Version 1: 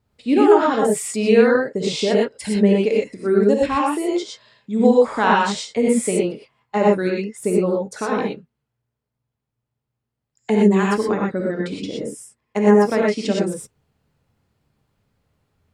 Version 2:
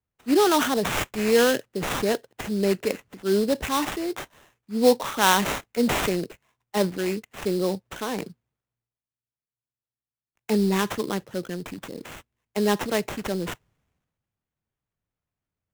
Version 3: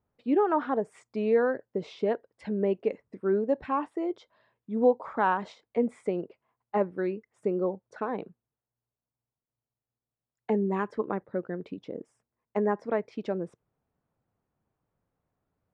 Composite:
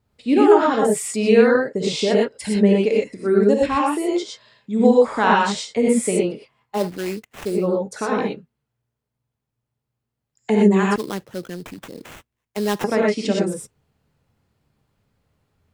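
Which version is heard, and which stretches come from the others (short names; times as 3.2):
1
6.77–7.56 from 2, crossfade 0.24 s
10.96–12.84 from 2
not used: 3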